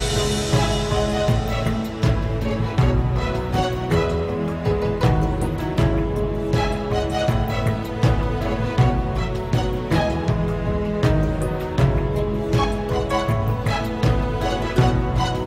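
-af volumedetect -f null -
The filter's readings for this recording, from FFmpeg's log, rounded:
mean_volume: -20.3 dB
max_volume: -3.1 dB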